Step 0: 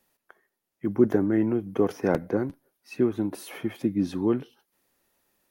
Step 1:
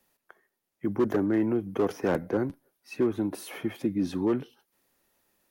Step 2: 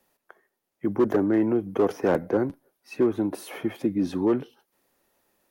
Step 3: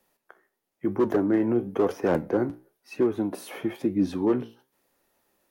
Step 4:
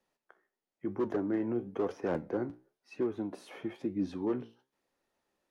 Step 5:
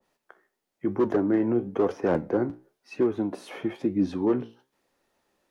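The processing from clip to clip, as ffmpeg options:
ffmpeg -i in.wav -filter_complex "[0:a]acrossover=split=280|6400[link_01][link_02][link_03];[link_01]alimiter=level_in=1.5dB:limit=-24dB:level=0:latency=1,volume=-1.5dB[link_04];[link_02]volume=21dB,asoftclip=hard,volume=-21dB[link_05];[link_04][link_05][link_03]amix=inputs=3:normalize=0" out.wav
ffmpeg -i in.wav -af "equalizer=frequency=590:width_type=o:width=2.4:gain=5" out.wav
ffmpeg -i in.wav -af "flanger=delay=9.7:depth=8.2:regen=72:speed=1:shape=triangular,volume=3.5dB" out.wav
ffmpeg -i in.wav -af "lowpass=7100,volume=-9dB" out.wav
ffmpeg -i in.wav -af "adynamicequalizer=threshold=0.00251:dfrequency=1700:dqfactor=0.7:tfrequency=1700:tqfactor=0.7:attack=5:release=100:ratio=0.375:range=1.5:mode=cutabove:tftype=highshelf,volume=8.5dB" out.wav

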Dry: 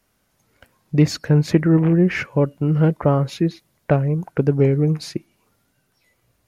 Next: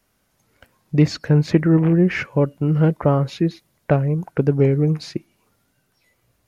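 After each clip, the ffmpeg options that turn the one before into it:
ffmpeg -i in.wav -filter_complex "[0:a]acrossover=split=6300[link_01][link_02];[link_02]acompressor=threshold=-52dB:ratio=4:attack=1:release=60[link_03];[link_01][link_03]amix=inputs=2:normalize=0" out.wav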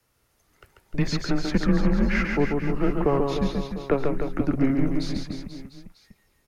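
ffmpeg -i in.wav -filter_complex "[0:a]acrossover=split=320|970|1400[link_01][link_02][link_03][link_04];[link_01]asoftclip=type=tanh:threshold=-21.5dB[link_05];[link_05][link_02][link_03][link_04]amix=inputs=4:normalize=0,afreqshift=-140,aecho=1:1:140|301|486.2|699.1|943.9:0.631|0.398|0.251|0.158|0.1,volume=-2.5dB" out.wav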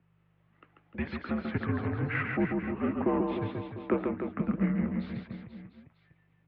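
ffmpeg -i in.wav -af "aeval=exprs='val(0)+0.00398*(sin(2*PI*50*n/s)+sin(2*PI*2*50*n/s)/2+sin(2*PI*3*50*n/s)/3+sin(2*PI*4*50*n/s)/4+sin(2*PI*5*50*n/s)/5)':channel_layout=same,flanger=delay=2.6:depth=5.1:regen=88:speed=1.7:shape=sinusoidal,highpass=frequency=220:width_type=q:width=0.5412,highpass=frequency=220:width_type=q:width=1.307,lowpass=frequency=3100:width_type=q:width=0.5176,lowpass=frequency=3100:width_type=q:width=0.7071,lowpass=frequency=3100:width_type=q:width=1.932,afreqshift=-85" out.wav

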